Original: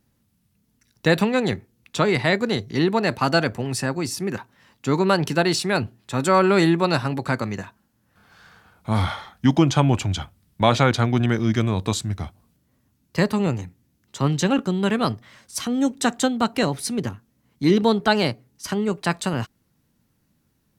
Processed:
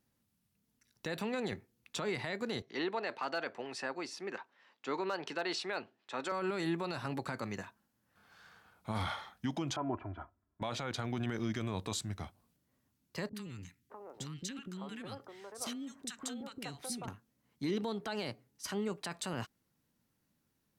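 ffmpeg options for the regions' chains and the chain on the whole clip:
-filter_complex "[0:a]asettb=1/sr,asplit=3[s0][s1][s2];[s0]atrim=end=2.624[s3];[s1]atrim=start=2.62:end=6.32,asetpts=PTS-STARTPTS,afade=t=in:d=0.004:c=qsin,afade=t=out:st=3.696:d=0.004:c=qsin,highpass=390,lowpass=4100,asoftclip=type=hard:threshold=0.335[s4];[s2]atrim=start=6.316[s5];[s3][s4]acrossfade=d=0.004:c1=hsin:c2=qsin[s6];[s6][s5]acrossfade=d=0.004:c1=qsin:c2=hsin,asettb=1/sr,asplit=3[s7][s8][s9];[s7]atrim=end=9.764[s10];[s8]atrim=start=9.76:end=10.62,asetpts=PTS-STARTPTS,afade=t=in:d=0.004:c=qsin,afade=t=out:st=0.856:d=0.004:c=qsin,lowpass=f=1400:w=0.5412,lowpass=f=1400:w=1.3066,lowshelf=f=440:g=-6.5,aecho=1:1:3:0.74,atrim=end_sample=37926[s11];[s9]atrim=start=10.616[s12];[s10][s11]acrossfade=d=0.004:c1=hsin:c2=qsin[s13];[s13][s12]acrossfade=d=0.004:c1=qsin:c2=hsin,asettb=1/sr,asplit=3[s14][s15][s16];[s14]atrim=end=13.294[s17];[s15]atrim=start=13.29:end=17.08,asetpts=PTS-STARTPTS,afade=t=in:d=0.004:c=qsin,afade=t=out:st=3.786:d=0.004:c=qsin,acompressor=threshold=0.0447:ratio=5:attack=3.2:release=140:knee=1:detection=peak,acrossover=split=380|1300[s18][s19][s20];[s20]adelay=60[s21];[s19]adelay=610[s22];[s18][s22][s21]amix=inputs=3:normalize=0,atrim=end_sample=167139[s23];[s16]atrim=start=17.076[s24];[s17][s23]acrossfade=d=0.004:c1=hsin:c2=qsin[s25];[s25][s24]acrossfade=d=0.004:c1=qsin:c2=hsin,lowshelf=f=210:g=-7.5,acompressor=threshold=0.1:ratio=6,alimiter=limit=0.133:level=0:latency=1:release=15,volume=0.376"

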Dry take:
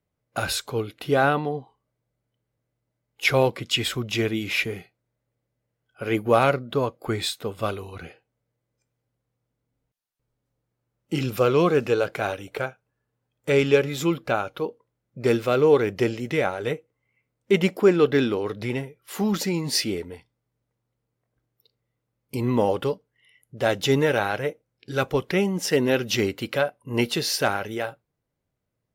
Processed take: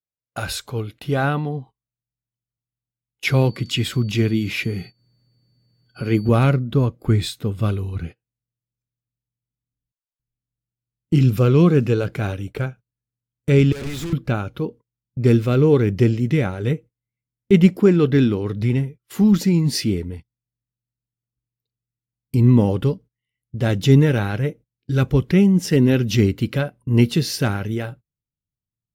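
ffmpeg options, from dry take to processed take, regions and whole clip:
-filter_complex "[0:a]asettb=1/sr,asplit=3[s0][s1][s2];[s0]atrim=end=3.244[s3];[s1]atrim=start=3.24:end=6.29,asetpts=PTS-STARTPTS,afade=t=in:d=0.004:c=qsin,afade=t=out:st=3.046:d=0.004:c=qsin,highpass=110,acompressor=mode=upward:threshold=0.0447:ratio=2.5:attack=3.2:release=140:knee=2.83:detection=peak,aeval=exprs='val(0)+0.00501*sin(2*PI*4500*n/s)':c=same[s4];[s2]atrim=start=6.286[s5];[s3][s4]acrossfade=d=0.004:c1=hsin:c2=qsin[s6];[s6][s5]acrossfade=d=0.004:c1=qsin:c2=hsin,asettb=1/sr,asplit=3[s7][s8][s9];[s7]atrim=end=13.724[s10];[s8]atrim=start=13.72:end=14.13,asetpts=PTS-STARTPTS,afade=t=in:d=0.004:c=qsin,afade=t=out:st=0.406:d=0.004:c=qsin,acompressor=threshold=0.0501:ratio=3:attack=3.2:release=140:knee=1:detection=peak,asplit=2[s11][s12];[s12]highpass=f=720:p=1,volume=25.1,asoftclip=type=tanh:threshold=0.158[s13];[s11][s13]amix=inputs=2:normalize=0,lowpass=f=3400:p=1,volume=0.501,volume=39.8,asoftclip=hard,volume=0.0251[s14];[s9]atrim=start=14.126[s15];[s10][s14]acrossfade=d=0.004:c1=hsin:c2=qsin[s16];[s16][s15]acrossfade=d=0.004:c1=qsin:c2=hsin,agate=range=0.0708:threshold=0.00794:ratio=16:detection=peak,asubboost=boost=7.5:cutoff=230,volume=0.891"

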